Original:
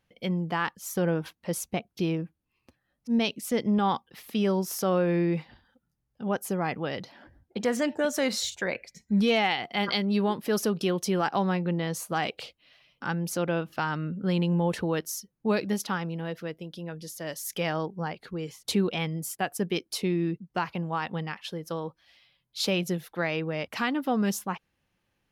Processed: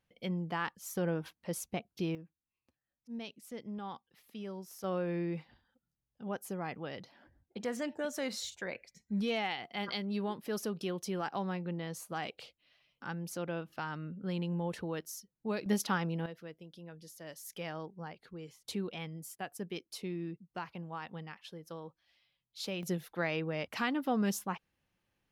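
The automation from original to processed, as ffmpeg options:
ffmpeg -i in.wav -af "asetnsamples=nb_out_samples=441:pad=0,asendcmd='2.15 volume volume -17.5dB;4.84 volume volume -10dB;15.66 volume volume -2dB;16.26 volume volume -12dB;22.83 volume volume -5dB',volume=-7dB" out.wav

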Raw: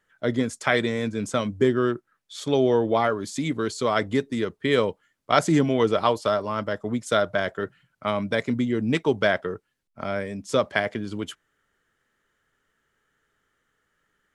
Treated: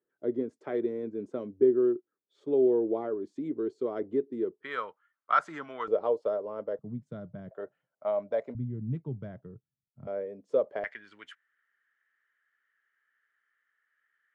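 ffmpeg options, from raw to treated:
ffmpeg -i in.wav -af "asetnsamples=nb_out_samples=441:pad=0,asendcmd='4.63 bandpass f 1300;5.88 bandpass f 480;6.79 bandpass f 150;7.51 bandpass f 610;8.55 bandpass f 130;10.07 bandpass f 490;10.84 bandpass f 1800',bandpass=frequency=370:width_type=q:width=3.7:csg=0" out.wav

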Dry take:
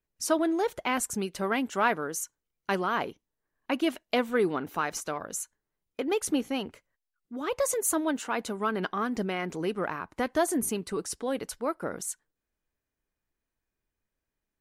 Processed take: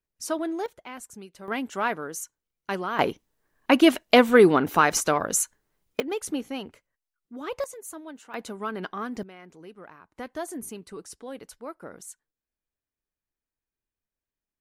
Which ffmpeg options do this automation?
ffmpeg -i in.wav -af "asetnsamples=nb_out_samples=441:pad=0,asendcmd='0.66 volume volume -12dB;1.48 volume volume -1.5dB;2.99 volume volume 10.5dB;6 volume volume -2.5dB;7.64 volume volume -13dB;8.34 volume volume -3dB;9.23 volume volume -15dB;10.15 volume volume -8dB',volume=-3dB" out.wav

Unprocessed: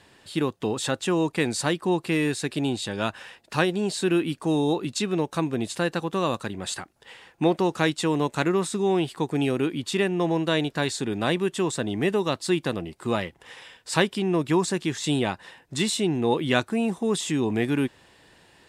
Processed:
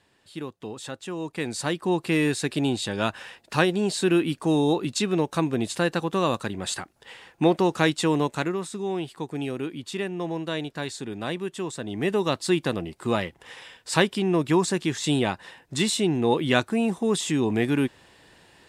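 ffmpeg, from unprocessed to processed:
ffmpeg -i in.wav -af "volume=8.5dB,afade=type=in:start_time=1.17:duration=1.02:silence=0.281838,afade=type=out:start_time=8.14:duration=0.43:silence=0.421697,afade=type=in:start_time=11.82:duration=0.43:silence=0.446684" out.wav

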